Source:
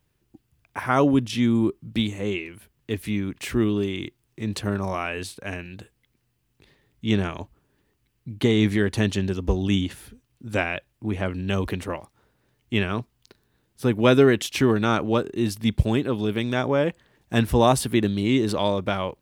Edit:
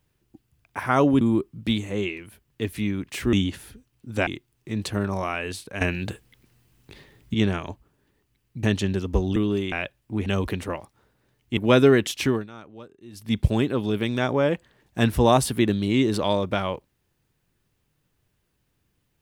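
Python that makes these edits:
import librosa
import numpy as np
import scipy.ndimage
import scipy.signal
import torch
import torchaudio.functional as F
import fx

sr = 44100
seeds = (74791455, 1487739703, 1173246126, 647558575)

y = fx.edit(x, sr, fx.cut(start_s=1.21, length_s=0.29),
    fx.swap(start_s=3.62, length_s=0.36, other_s=9.7, other_length_s=0.94),
    fx.clip_gain(start_s=5.52, length_s=1.53, db=10.0),
    fx.cut(start_s=8.34, length_s=0.63),
    fx.cut(start_s=11.18, length_s=0.28),
    fx.cut(start_s=12.77, length_s=1.15),
    fx.fade_down_up(start_s=14.47, length_s=1.35, db=-21.0, fade_s=0.35, curve='qsin'), tone=tone)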